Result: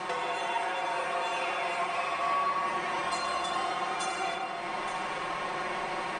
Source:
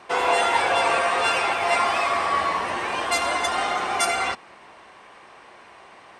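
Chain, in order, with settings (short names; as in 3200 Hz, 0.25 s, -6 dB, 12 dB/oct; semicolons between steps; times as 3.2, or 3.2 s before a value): steep low-pass 10000 Hz 96 dB/oct; comb 5.5 ms, depth 98%; compressor 10:1, threshold -43 dBFS, peak gain reduction 29.5 dB; echo 0.873 s -11 dB; shoebox room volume 150 m³, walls hard, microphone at 0.53 m; gain +9 dB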